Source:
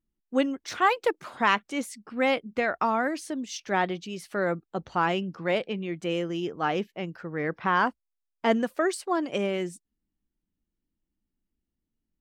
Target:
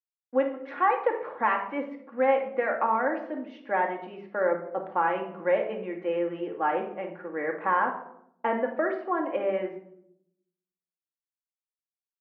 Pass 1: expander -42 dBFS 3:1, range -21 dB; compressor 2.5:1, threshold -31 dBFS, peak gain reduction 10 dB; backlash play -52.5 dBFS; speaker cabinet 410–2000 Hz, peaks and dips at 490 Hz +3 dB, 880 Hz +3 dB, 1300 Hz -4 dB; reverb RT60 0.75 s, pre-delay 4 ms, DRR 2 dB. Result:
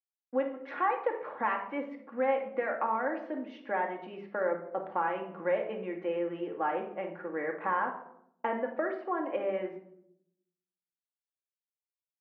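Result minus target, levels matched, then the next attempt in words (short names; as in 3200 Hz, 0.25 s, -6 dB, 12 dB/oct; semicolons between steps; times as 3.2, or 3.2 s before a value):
compressor: peak gain reduction +5.5 dB
expander -42 dBFS 3:1, range -21 dB; compressor 2.5:1, threshold -21.5 dBFS, peak gain reduction 4 dB; backlash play -52.5 dBFS; speaker cabinet 410–2000 Hz, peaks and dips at 490 Hz +3 dB, 880 Hz +3 dB, 1300 Hz -4 dB; reverb RT60 0.75 s, pre-delay 4 ms, DRR 2 dB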